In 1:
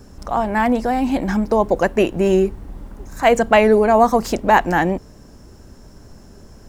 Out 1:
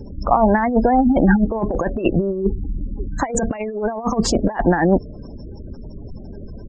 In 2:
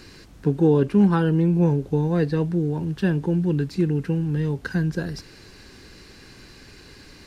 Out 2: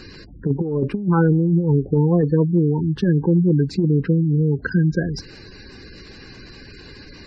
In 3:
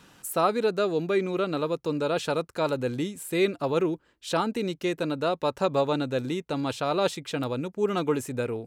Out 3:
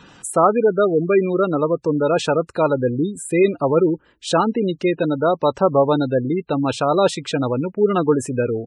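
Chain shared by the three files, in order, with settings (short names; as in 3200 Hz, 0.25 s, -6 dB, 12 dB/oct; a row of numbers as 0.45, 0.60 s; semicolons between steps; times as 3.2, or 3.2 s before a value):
spectral gate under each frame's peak -20 dB strong; negative-ratio compressor -20 dBFS, ratio -0.5; downsampling 22050 Hz; match loudness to -19 LUFS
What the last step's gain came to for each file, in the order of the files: +4.0, +4.5, +9.0 dB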